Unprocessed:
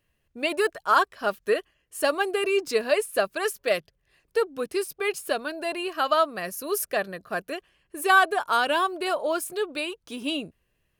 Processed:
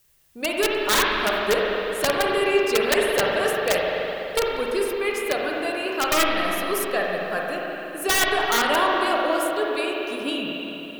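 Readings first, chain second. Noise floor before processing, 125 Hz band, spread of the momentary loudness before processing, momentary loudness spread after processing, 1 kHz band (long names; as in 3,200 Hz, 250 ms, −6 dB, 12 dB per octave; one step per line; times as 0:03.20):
−74 dBFS, +9.5 dB, 10 LU, 8 LU, +1.0 dB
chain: background noise blue −62 dBFS
wrap-around overflow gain 14 dB
spring reverb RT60 3.4 s, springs 42/55 ms, chirp 45 ms, DRR −2.5 dB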